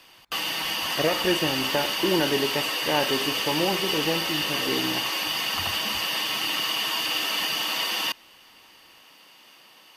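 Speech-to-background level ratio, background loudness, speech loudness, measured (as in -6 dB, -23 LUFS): -3.5 dB, -25.0 LUFS, -28.5 LUFS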